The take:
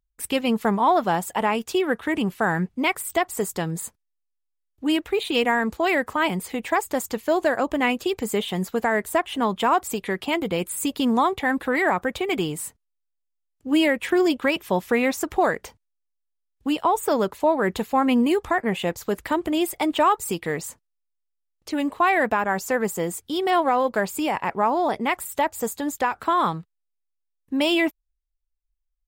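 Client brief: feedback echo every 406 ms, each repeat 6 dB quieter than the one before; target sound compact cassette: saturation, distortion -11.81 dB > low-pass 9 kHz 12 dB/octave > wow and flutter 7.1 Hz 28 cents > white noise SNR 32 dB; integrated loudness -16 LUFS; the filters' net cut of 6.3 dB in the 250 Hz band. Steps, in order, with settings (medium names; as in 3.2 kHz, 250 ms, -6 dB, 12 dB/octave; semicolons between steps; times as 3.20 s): peaking EQ 250 Hz -8.5 dB; feedback delay 406 ms, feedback 50%, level -6 dB; saturation -20 dBFS; low-pass 9 kHz 12 dB/octave; wow and flutter 7.1 Hz 28 cents; white noise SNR 32 dB; trim +11.5 dB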